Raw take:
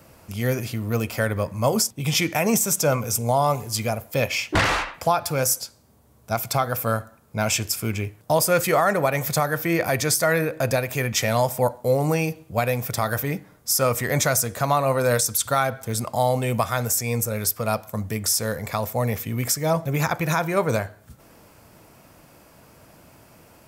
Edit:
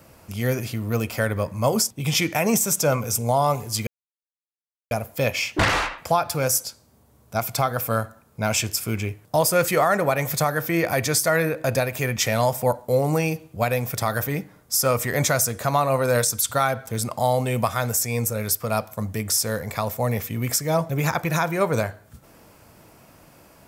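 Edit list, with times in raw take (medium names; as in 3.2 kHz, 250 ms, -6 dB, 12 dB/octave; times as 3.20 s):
3.87 s: insert silence 1.04 s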